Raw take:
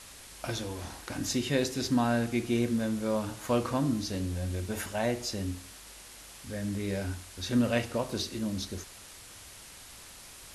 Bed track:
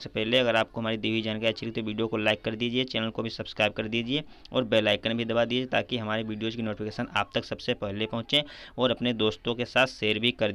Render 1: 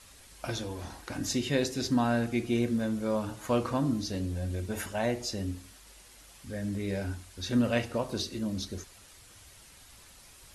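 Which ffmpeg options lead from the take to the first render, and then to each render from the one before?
-af "afftdn=nr=7:nf=-49"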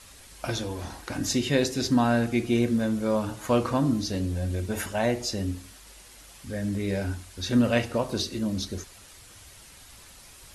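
-af "volume=1.68"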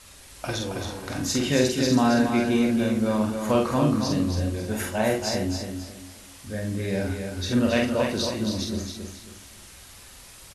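-filter_complex "[0:a]asplit=2[s0][s1];[s1]adelay=47,volume=0.668[s2];[s0][s2]amix=inputs=2:normalize=0,aecho=1:1:273|546|819|1092:0.501|0.155|0.0482|0.0149"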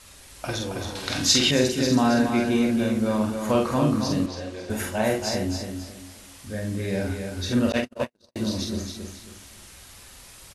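-filter_complex "[0:a]asettb=1/sr,asplit=3[s0][s1][s2];[s0]atrim=end=0.954[s3];[s1]atrim=start=0.95:end=1.51,asetpts=PTS-STARTPTS,afade=t=in:d=0.004:c=qsin,afade=t=out:st=0.556:d=0.004:c=qsin,equalizer=f=3800:w=0.7:g=13.5[s4];[s2]atrim=start=1.506[s5];[s3][s4]acrossfade=d=0.004:c1=hsin:c2=qsin[s6];[s6][s5]acrossfade=d=0.004:c1=qsin:c2=hsin,asettb=1/sr,asplit=3[s7][s8][s9];[s7]atrim=end=4.264[s10];[s8]atrim=start=4.26:end=4.7,asetpts=PTS-STARTPTS,afade=t=in:d=0.004:c=qsin,afade=t=out:st=0.436:d=0.004:c=qsin,acrossover=split=340 6700:gain=0.2 1 0.126[s11][s12][s13];[s11][s12][s13]amix=inputs=3:normalize=0[s14];[s9]atrim=start=4.696[s15];[s10][s14]acrossfade=d=0.004:c1=hsin:c2=qsin[s16];[s16][s15]acrossfade=d=0.004:c1=qsin:c2=hsin,asettb=1/sr,asplit=3[s17][s18][s19];[s17]atrim=end=7.724[s20];[s18]atrim=start=7.72:end=8.36,asetpts=PTS-STARTPTS,afade=t=in:d=0.004:c=qsin,afade=t=out:st=0.636:d=0.004:c=qsin,agate=range=0.001:threshold=0.0794:ratio=16:release=100:detection=peak[s21];[s19]atrim=start=8.356[s22];[s20][s21]acrossfade=d=0.004:c1=hsin:c2=qsin[s23];[s23][s22]acrossfade=d=0.004:c1=qsin:c2=hsin"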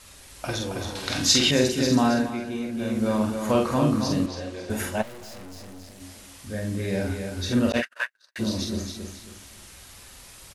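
-filter_complex "[0:a]asplit=3[s0][s1][s2];[s0]afade=t=out:st=5.01:d=0.02[s3];[s1]aeval=exprs='(tanh(112*val(0)+0.75)-tanh(0.75))/112':c=same,afade=t=in:st=5.01:d=0.02,afade=t=out:st=6:d=0.02[s4];[s2]afade=t=in:st=6:d=0.02[s5];[s3][s4][s5]amix=inputs=3:normalize=0,asplit=3[s6][s7][s8];[s6]afade=t=out:st=7.81:d=0.02[s9];[s7]highpass=f=1600:t=q:w=7.1,afade=t=in:st=7.81:d=0.02,afade=t=out:st=8.38:d=0.02[s10];[s8]afade=t=in:st=8.38:d=0.02[s11];[s9][s10][s11]amix=inputs=3:normalize=0,asplit=3[s12][s13][s14];[s12]atrim=end=2.38,asetpts=PTS-STARTPTS,afade=t=out:st=2.04:d=0.34:silence=0.354813[s15];[s13]atrim=start=2.38:end=2.72,asetpts=PTS-STARTPTS,volume=0.355[s16];[s14]atrim=start=2.72,asetpts=PTS-STARTPTS,afade=t=in:d=0.34:silence=0.354813[s17];[s15][s16][s17]concat=n=3:v=0:a=1"

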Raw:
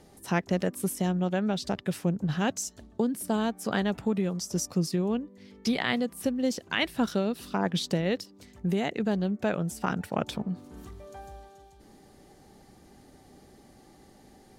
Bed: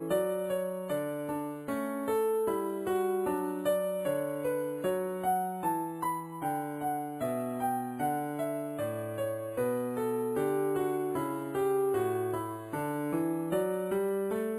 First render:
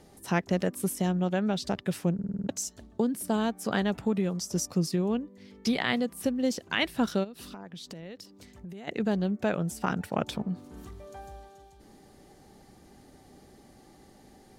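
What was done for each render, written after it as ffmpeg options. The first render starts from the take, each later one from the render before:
-filter_complex "[0:a]asplit=3[s0][s1][s2];[s0]afade=t=out:st=7.23:d=0.02[s3];[s1]acompressor=threshold=0.0112:ratio=10:attack=3.2:release=140:knee=1:detection=peak,afade=t=in:st=7.23:d=0.02,afade=t=out:st=8.87:d=0.02[s4];[s2]afade=t=in:st=8.87:d=0.02[s5];[s3][s4][s5]amix=inputs=3:normalize=0,asplit=8[s6][s7][s8][s9][s10][s11][s12][s13];[s6]atrim=end=2.192[s14];[s7]atrim=start=2.138:end=2.192[s15];[s8]atrim=start=2.138:end=2.192[s16];[s9]atrim=start=2.138:end=2.192[s17];[s10]atrim=start=2.138:end=2.192[s18];[s11]atrim=start=2.138:end=2.192[s19];[s12]atrim=start=2.138:end=2.192[s20];[s13]atrim=start=2.488[s21];[s14][s15]acrossfade=d=0.004:c1=hsin:c2=hsin[s22];[s22][s16]acrossfade=d=0.004:c1=hsin:c2=hsin[s23];[s23][s17]acrossfade=d=0.004:c1=hsin:c2=hsin[s24];[s24][s18]acrossfade=d=0.004:c1=hsin:c2=hsin[s25];[s25][s19]acrossfade=d=0.004:c1=hsin:c2=hsin[s26];[s26][s20]acrossfade=d=0.004:c1=hsin:c2=hsin[s27];[s27][s21]acrossfade=d=0.004:c1=hsin:c2=hsin"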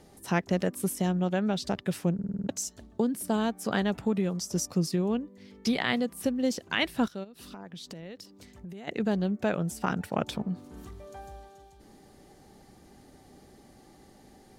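-filter_complex "[0:a]asplit=2[s0][s1];[s0]atrim=end=7.08,asetpts=PTS-STARTPTS,afade=t=out:st=7.076:d=0.004:c=hsin:silence=0.141254[s2];[s1]atrim=start=7.08,asetpts=PTS-STARTPTS,afade=t=in:d=0.52:silence=0.141254[s3];[s2][s3]concat=n=2:v=0:a=1"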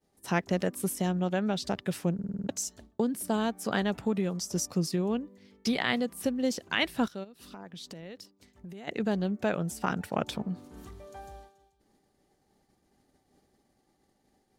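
-af "agate=range=0.0224:threshold=0.00631:ratio=3:detection=peak,lowshelf=f=320:g=-2.5"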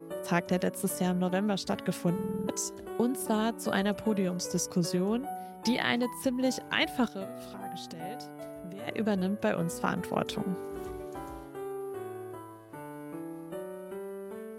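-filter_complex "[1:a]volume=0.335[s0];[0:a][s0]amix=inputs=2:normalize=0"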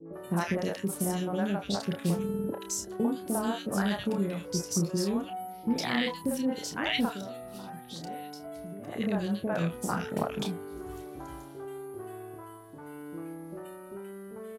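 -filter_complex "[0:a]asplit=2[s0][s1];[s1]adelay=30,volume=0.447[s2];[s0][s2]amix=inputs=2:normalize=0,acrossover=split=510|1800[s3][s4][s5];[s4]adelay=50[s6];[s5]adelay=130[s7];[s3][s6][s7]amix=inputs=3:normalize=0"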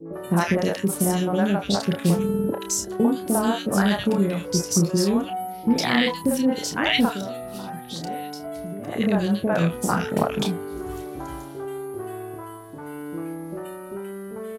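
-af "volume=2.66"

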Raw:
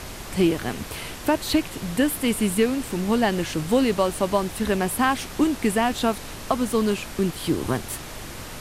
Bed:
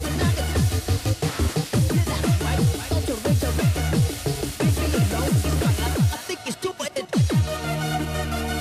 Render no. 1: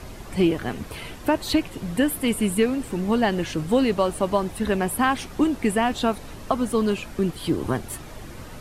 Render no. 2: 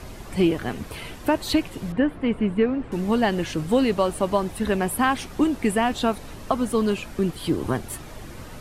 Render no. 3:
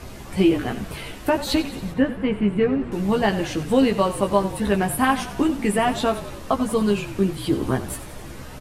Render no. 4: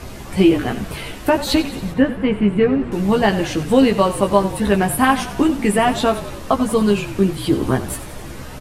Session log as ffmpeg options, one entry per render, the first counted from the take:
-af "afftdn=nr=9:nf=-37"
-filter_complex "[0:a]asettb=1/sr,asplit=3[s0][s1][s2];[s0]atrim=end=1.924[s3];[s1]atrim=start=1.92:end=2.92,asetpts=PTS-STARTPTS,afade=t=in:d=0.004:c=qsin,afade=t=out:st=0.996:d=0.004:c=qsin,lowpass=1900[s4];[s2]atrim=start=2.916[s5];[s3][s4]acrossfade=d=0.004:c1=hsin:c2=qsin[s6];[s6][s5]acrossfade=d=0.004:c1=qsin:c2=hsin"
-filter_complex "[0:a]asplit=2[s0][s1];[s1]adelay=15,volume=0.631[s2];[s0][s2]amix=inputs=2:normalize=0,asplit=7[s3][s4][s5][s6][s7][s8][s9];[s4]adelay=91,afreqshift=-35,volume=0.211[s10];[s5]adelay=182,afreqshift=-70,volume=0.127[s11];[s6]adelay=273,afreqshift=-105,volume=0.0759[s12];[s7]adelay=364,afreqshift=-140,volume=0.0457[s13];[s8]adelay=455,afreqshift=-175,volume=0.0275[s14];[s9]adelay=546,afreqshift=-210,volume=0.0164[s15];[s3][s10][s11][s12][s13][s14][s15]amix=inputs=7:normalize=0"
-af "volume=1.68"

